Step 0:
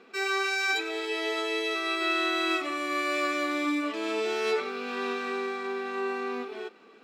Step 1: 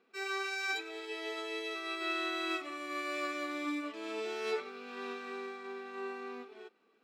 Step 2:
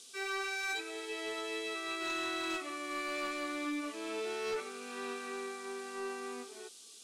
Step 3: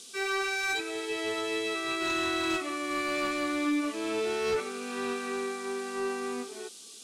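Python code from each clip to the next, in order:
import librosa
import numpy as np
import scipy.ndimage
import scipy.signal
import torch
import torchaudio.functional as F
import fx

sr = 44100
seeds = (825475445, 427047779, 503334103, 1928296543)

y1 = fx.upward_expand(x, sr, threshold_db=-44.0, expansion=1.5)
y1 = y1 * librosa.db_to_amplitude(-6.5)
y2 = fx.dmg_noise_band(y1, sr, seeds[0], low_hz=3000.0, high_hz=10000.0, level_db=-56.0)
y2 = fx.fold_sine(y2, sr, drive_db=6, ceiling_db=-23.5)
y2 = y2 * librosa.db_to_amplitude(-8.5)
y3 = fx.peak_eq(y2, sr, hz=97.0, db=12.5, octaves=2.1)
y3 = y3 * librosa.db_to_amplitude(6.0)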